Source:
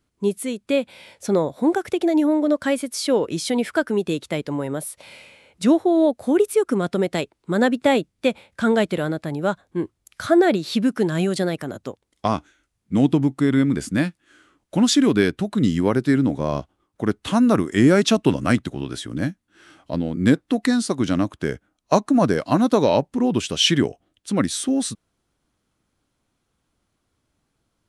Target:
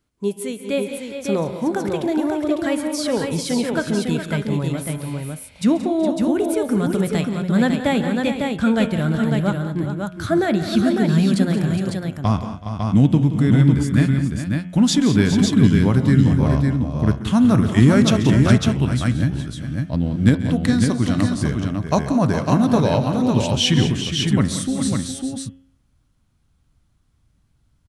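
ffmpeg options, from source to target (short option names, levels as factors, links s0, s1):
-filter_complex "[0:a]bandreject=f=89.63:t=h:w=4,bandreject=f=179.26:t=h:w=4,bandreject=f=268.89:t=h:w=4,bandreject=f=358.52:t=h:w=4,bandreject=f=448.15:t=h:w=4,bandreject=f=537.78:t=h:w=4,bandreject=f=627.41:t=h:w=4,bandreject=f=717.04:t=h:w=4,bandreject=f=806.67:t=h:w=4,bandreject=f=896.3:t=h:w=4,bandreject=f=985.93:t=h:w=4,bandreject=f=1075.56:t=h:w=4,bandreject=f=1165.19:t=h:w=4,bandreject=f=1254.82:t=h:w=4,bandreject=f=1344.45:t=h:w=4,bandreject=f=1434.08:t=h:w=4,bandreject=f=1523.71:t=h:w=4,bandreject=f=1613.34:t=h:w=4,bandreject=f=1702.97:t=h:w=4,bandreject=f=1792.6:t=h:w=4,bandreject=f=1882.23:t=h:w=4,bandreject=f=1971.86:t=h:w=4,bandreject=f=2061.49:t=h:w=4,bandreject=f=2151.12:t=h:w=4,bandreject=f=2240.75:t=h:w=4,bandreject=f=2330.38:t=h:w=4,bandreject=f=2420.01:t=h:w=4,bandreject=f=2509.64:t=h:w=4,bandreject=f=2599.27:t=h:w=4,bandreject=f=2688.9:t=h:w=4,bandreject=f=2778.53:t=h:w=4,bandreject=f=2868.16:t=h:w=4,bandreject=f=2957.79:t=h:w=4,bandreject=f=3047.42:t=h:w=4,bandreject=f=3137.05:t=h:w=4,bandreject=f=3226.68:t=h:w=4,bandreject=f=3316.31:t=h:w=4,bandreject=f=3405.94:t=h:w=4,asubboost=boost=6.5:cutoff=150,asplit=2[s0][s1];[s1]aecho=0:1:135|177|209|375|413|552:0.141|0.237|0.15|0.112|0.316|0.596[s2];[s0][s2]amix=inputs=2:normalize=0,volume=0.891"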